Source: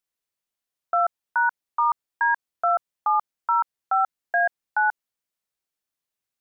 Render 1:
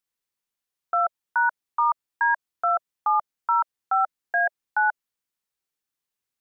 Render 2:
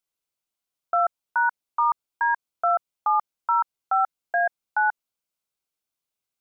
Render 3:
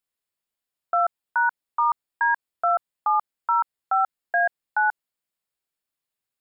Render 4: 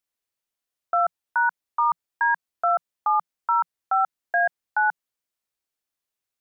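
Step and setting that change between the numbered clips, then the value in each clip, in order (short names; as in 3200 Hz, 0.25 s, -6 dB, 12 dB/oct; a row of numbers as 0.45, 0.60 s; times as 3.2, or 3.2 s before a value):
notch, frequency: 630, 1800, 6000, 170 Hz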